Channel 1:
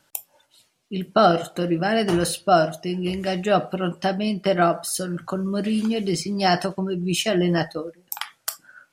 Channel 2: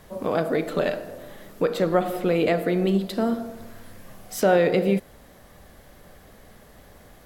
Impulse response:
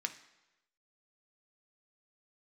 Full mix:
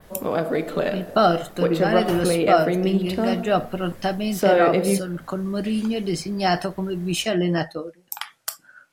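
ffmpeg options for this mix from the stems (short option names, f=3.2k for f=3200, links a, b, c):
-filter_complex "[0:a]volume=-1dB[a];[1:a]volume=0.5dB[b];[a][b]amix=inputs=2:normalize=0,adynamicequalizer=threshold=0.00631:dfrequency=6800:dqfactor=0.8:tfrequency=6800:tqfactor=0.8:attack=5:release=100:ratio=0.375:range=2:mode=cutabove:tftype=bell"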